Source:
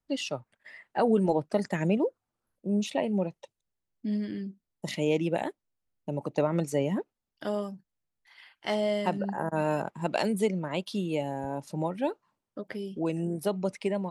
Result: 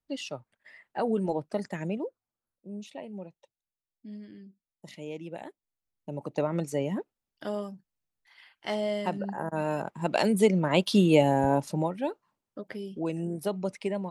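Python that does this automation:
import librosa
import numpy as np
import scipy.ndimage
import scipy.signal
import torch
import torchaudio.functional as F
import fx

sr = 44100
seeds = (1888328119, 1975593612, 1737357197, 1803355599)

y = fx.gain(x, sr, db=fx.line((1.58, -4.0), (2.74, -12.5), (5.19, -12.5), (6.35, -2.0), (9.74, -2.0), (10.95, 10.0), (11.54, 10.0), (11.97, -1.5)))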